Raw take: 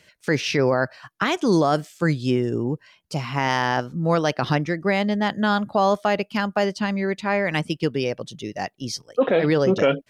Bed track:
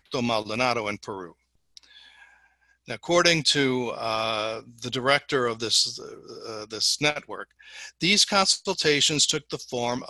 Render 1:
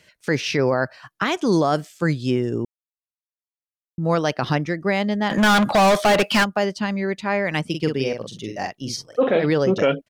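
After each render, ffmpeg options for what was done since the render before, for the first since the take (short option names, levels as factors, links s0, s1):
-filter_complex "[0:a]asplit=3[s0][s1][s2];[s0]afade=t=out:st=5.3:d=0.02[s3];[s1]asplit=2[s4][s5];[s5]highpass=f=720:p=1,volume=31.6,asoftclip=type=tanh:threshold=0.335[s6];[s4][s6]amix=inputs=2:normalize=0,lowpass=f=5900:p=1,volume=0.501,afade=t=in:st=5.3:d=0.02,afade=t=out:st=6.43:d=0.02[s7];[s2]afade=t=in:st=6.43:d=0.02[s8];[s3][s7][s8]amix=inputs=3:normalize=0,asplit=3[s9][s10][s11];[s9]afade=t=out:st=7.72:d=0.02[s12];[s10]asplit=2[s13][s14];[s14]adelay=45,volume=0.562[s15];[s13][s15]amix=inputs=2:normalize=0,afade=t=in:st=7.72:d=0.02,afade=t=out:st=9.37:d=0.02[s16];[s11]afade=t=in:st=9.37:d=0.02[s17];[s12][s16][s17]amix=inputs=3:normalize=0,asplit=3[s18][s19][s20];[s18]atrim=end=2.65,asetpts=PTS-STARTPTS,afade=t=out:st=2.646:d=0.004:c=hsin[s21];[s19]atrim=start=2.65:end=3.98,asetpts=PTS-STARTPTS,volume=0[s22];[s20]atrim=start=3.98,asetpts=PTS-STARTPTS,afade=t=in:d=0.004:c=hsin[s23];[s21][s22][s23]concat=n=3:v=0:a=1"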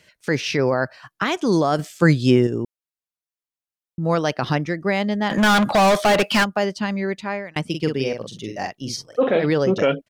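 -filter_complex "[0:a]asplit=4[s0][s1][s2][s3];[s0]atrim=end=1.792[s4];[s1]atrim=start=1.788:end=2.472,asetpts=PTS-STARTPTS,volume=2[s5];[s2]atrim=start=2.468:end=7.56,asetpts=PTS-STARTPTS,afade=t=out:st=4.522:d=0.57:c=qsin[s6];[s3]atrim=start=7.56,asetpts=PTS-STARTPTS,afade=t=in:d=0.004:c=hsin[s7];[s4][s5]acrossfade=d=0.004:c1=hsin:c2=hsin[s8];[s6][s7]concat=n=2:v=0:a=1[s9];[s8][s9]acrossfade=d=0.004:c1=hsin:c2=hsin"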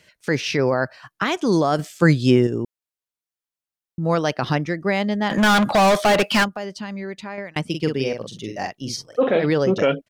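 -filter_complex "[0:a]asettb=1/sr,asplit=3[s0][s1][s2];[s0]atrim=end=6.484[s3];[s1]atrim=start=6.48:end=7.38,asetpts=PTS-STARTPTS,afade=t=in:d=0.004:c=qsin,afade=t=out:st=0.896:d=0.004:c=qsin,acompressor=threshold=0.0251:ratio=2:attack=3.2:release=140:knee=1:detection=peak[s4];[s2]atrim=start=7.376[s5];[s3][s4]acrossfade=d=0.004:c1=hsin:c2=qsin[s6];[s6][s5]acrossfade=d=0.004:c1=qsin:c2=hsin"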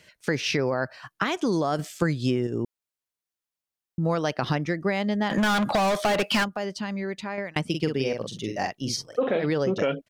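-af "acompressor=threshold=0.0891:ratio=6"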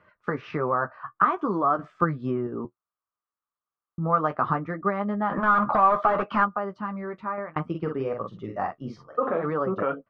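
-af "flanger=delay=9.7:depth=3.6:regen=-36:speed=0.61:shape=sinusoidal,lowpass=f=1200:t=q:w=7.4"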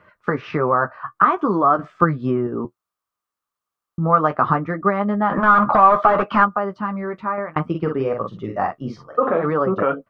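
-af "volume=2.24,alimiter=limit=0.794:level=0:latency=1"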